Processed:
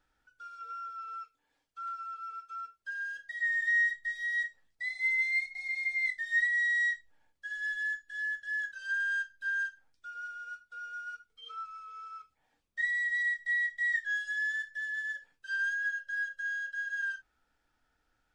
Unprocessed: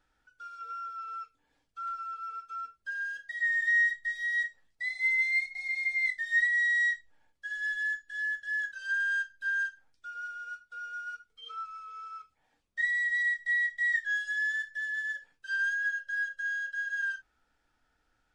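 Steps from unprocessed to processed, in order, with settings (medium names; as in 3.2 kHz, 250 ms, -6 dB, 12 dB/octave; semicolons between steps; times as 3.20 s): 1.20–3.09 s: bass shelf 270 Hz -10 dB; trim -2 dB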